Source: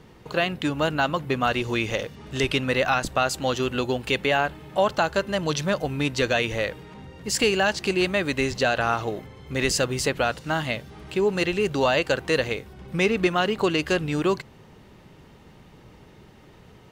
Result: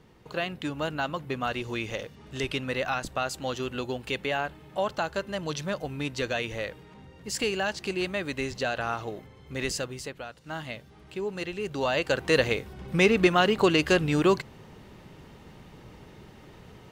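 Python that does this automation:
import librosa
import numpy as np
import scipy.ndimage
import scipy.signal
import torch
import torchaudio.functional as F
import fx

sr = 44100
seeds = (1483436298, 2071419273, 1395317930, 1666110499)

y = fx.gain(x, sr, db=fx.line((9.69, -7.0), (10.34, -18.0), (10.55, -10.0), (11.56, -10.0), (12.4, 1.0)))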